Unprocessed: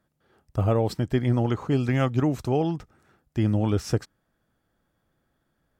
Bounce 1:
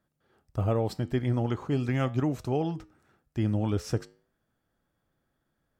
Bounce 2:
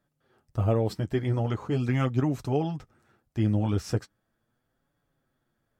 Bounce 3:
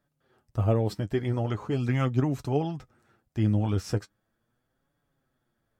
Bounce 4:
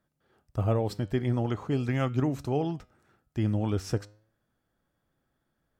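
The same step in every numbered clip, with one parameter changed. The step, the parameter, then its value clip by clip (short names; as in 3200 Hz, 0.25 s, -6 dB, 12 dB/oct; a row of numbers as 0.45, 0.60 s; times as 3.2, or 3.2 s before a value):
flange, regen: -87, -22, +32, +89%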